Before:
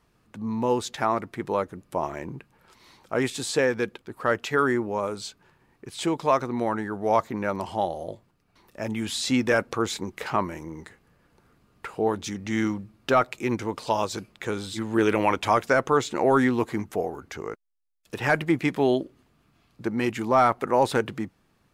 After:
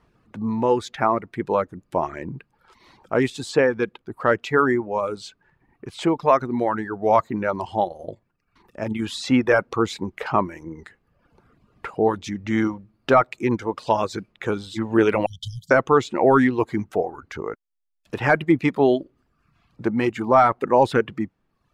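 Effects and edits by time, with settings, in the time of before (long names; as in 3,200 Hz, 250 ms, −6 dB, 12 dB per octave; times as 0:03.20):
0:07.83–0:09.02: amplitude modulation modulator 23 Hz, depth 20%
0:15.26–0:15.71: linear-phase brick-wall band-stop 180–3,000 Hz
whole clip: reverb reduction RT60 0.86 s; low-pass filter 2,200 Hz 6 dB per octave; level +5.5 dB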